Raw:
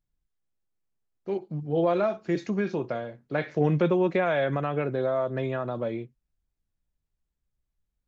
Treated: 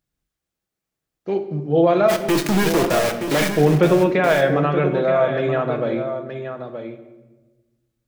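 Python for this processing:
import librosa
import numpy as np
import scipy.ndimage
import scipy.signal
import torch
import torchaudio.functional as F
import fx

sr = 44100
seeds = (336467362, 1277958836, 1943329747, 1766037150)

p1 = scipy.signal.sosfilt(scipy.signal.butter(2, 40.0, 'highpass', fs=sr, output='sos'), x)
p2 = fx.low_shelf(p1, sr, hz=130.0, db=-7.5)
p3 = fx.notch(p2, sr, hz=970.0, q=15.0)
p4 = fx.quant_companded(p3, sr, bits=2, at=(2.08, 3.55), fade=0.02)
p5 = p4 + fx.echo_single(p4, sr, ms=925, db=-9.0, dry=0)
p6 = fx.room_shoebox(p5, sr, seeds[0], volume_m3=710.0, walls='mixed', distance_m=0.64)
y = p6 * 10.0 ** (8.0 / 20.0)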